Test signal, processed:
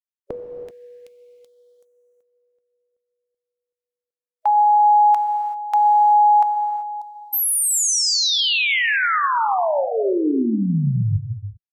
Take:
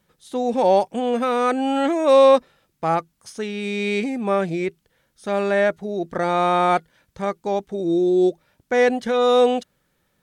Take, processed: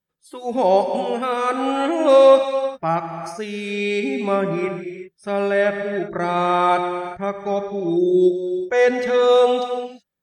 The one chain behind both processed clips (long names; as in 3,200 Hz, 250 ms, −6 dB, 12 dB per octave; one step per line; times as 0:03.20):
noise reduction from a noise print of the clip's start 20 dB
reverb whose tail is shaped and stops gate 410 ms flat, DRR 5.5 dB